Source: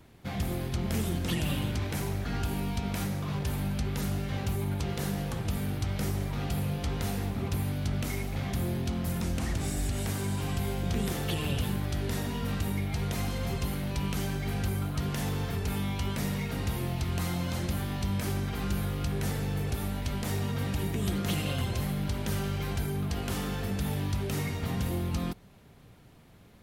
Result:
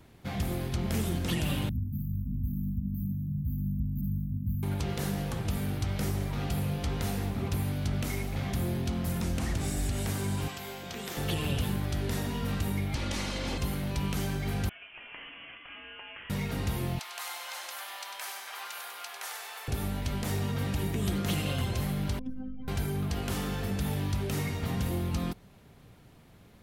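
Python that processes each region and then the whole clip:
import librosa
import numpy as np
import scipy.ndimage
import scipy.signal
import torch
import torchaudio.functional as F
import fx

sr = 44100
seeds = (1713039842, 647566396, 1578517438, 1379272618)

y = fx.chain(x, sr, fx.brickwall_bandstop(low_hz=280.0, high_hz=13000.0),
    fx.echo_wet_bandpass(ms=90, feedback_pct=69, hz=840.0, wet_db=-3.5), at=(1.69, 4.63))
y = fx.chain(y, sr, fx.highpass(hz=750.0, slope=6),
    fx.peak_eq(hz=9800.0, db=-11.0, octaves=0.24), at=(10.48, 11.17))
y = fx.chain(y, sr, fx.lower_of_two(delay_ms=3.5),
    fx.lowpass(hz=5600.0, slope=12),
    fx.high_shelf(hz=2700.0, db=10.0), at=(12.95, 13.58))
y = fx.chain(y, sr, fx.highpass(hz=900.0, slope=24),
    fx.high_shelf(hz=2600.0, db=-10.5),
    fx.freq_invert(carrier_hz=3800), at=(14.69, 16.3))
y = fx.chain(y, sr, fx.highpass(hz=760.0, slope=24),
    fx.echo_split(split_hz=2100.0, low_ms=279, high_ms=98, feedback_pct=52, wet_db=-6.5), at=(16.99, 19.68))
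y = fx.chain(y, sr, fx.spec_expand(power=2.4),
    fx.robotise(hz=258.0), at=(22.19, 22.68))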